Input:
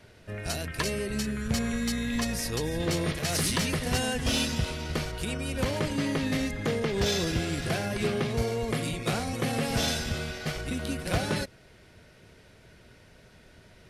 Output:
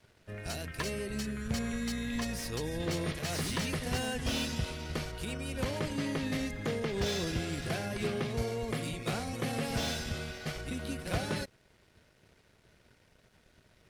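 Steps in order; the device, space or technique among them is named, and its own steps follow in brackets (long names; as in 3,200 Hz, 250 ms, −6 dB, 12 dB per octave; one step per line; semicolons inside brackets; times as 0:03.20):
early transistor amplifier (dead-zone distortion −58.5 dBFS; slew-rate limiting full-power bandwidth 150 Hz)
level −5 dB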